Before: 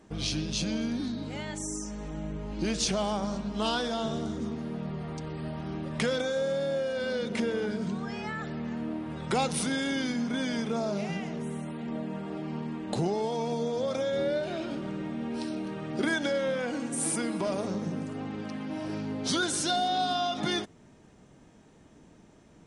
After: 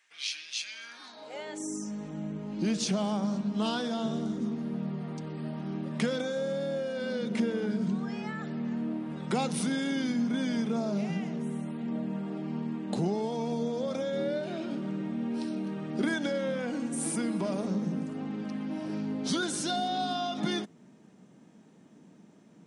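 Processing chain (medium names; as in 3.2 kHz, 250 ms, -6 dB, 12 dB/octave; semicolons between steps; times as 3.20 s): high-pass sweep 2.1 kHz -> 190 Hz, 0.72–1.85 s; trim -4 dB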